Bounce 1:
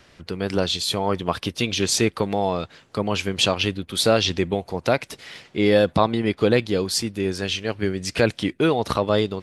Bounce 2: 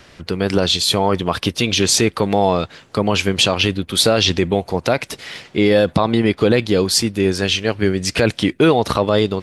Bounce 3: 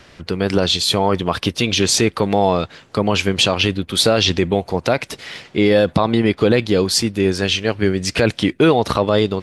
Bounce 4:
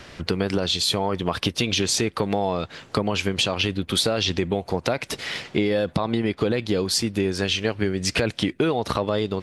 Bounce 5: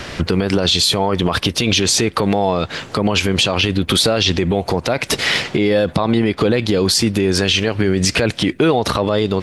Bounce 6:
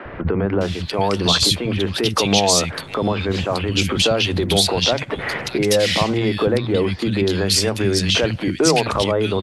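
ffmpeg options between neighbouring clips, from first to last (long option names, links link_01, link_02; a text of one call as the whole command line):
ffmpeg -i in.wav -af "alimiter=limit=-11dB:level=0:latency=1:release=36,volume=7.5dB" out.wav
ffmpeg -i in.wav -af "highshelf=frequency=10000:gain=-5.5" out.wav
ffmpeg -i in.wav -af "acompressor=threshold=-22dB:ratio=6,volume=2.5dB" out.wav
ffmpeg -i in.wav -af "alimiter=level_in=18dB:limit=-1dB:release=50:level=0:latency=1,volume=-4.5dB" out.wav
ffmpeg -i in.wav -filter_complex "[0:a]acrossover=split=220|2000[link_01][link_02][link_03];[link_01]adelay=50[link_04];[link_03]adelay=610[link_05];[link_04][link_02][link_05]amix=inputs=3:normalize=0,volume=-1dB" out.wav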